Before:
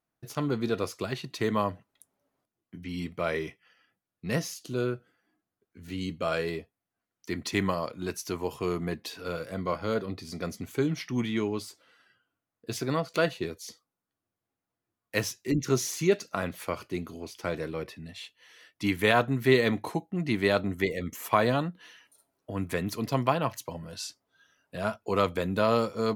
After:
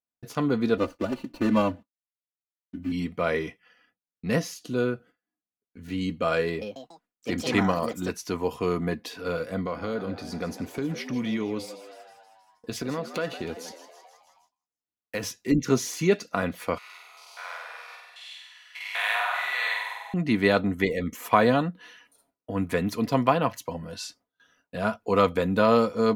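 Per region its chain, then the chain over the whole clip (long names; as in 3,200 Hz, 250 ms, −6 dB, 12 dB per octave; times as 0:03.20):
0:00.77–0:02.92: running median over 25 samples + downward expander −57 dBFS + comb filter 3.4 ms, depth 94%
0:06.47–0:08.33: high-shelf EQ 12,000 Hz −4 dB + delay with pitch and tempo change per echo 144 ms, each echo +4 semitones, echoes 3, each echo −6 dB
0:09.61–0:15.23: downward compressor 4 to 1, threshold −30 dBFS + echo with shifted repeats 159 ms, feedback 63%, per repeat +92 Hz, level −13 dB
0:16.78–0:20.14: spectrum averaged block by block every 200 ms + Butterworth high-pass 800 Hz + flutter between parallel walls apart 8.2 metres, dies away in 1.1 s
whole clip: noise gate with hold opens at −56 dBFS; high-shelf EQ 4,000 Hz −6.5 dB; comb filter 4.1 ms, depth 37%; level +4 dB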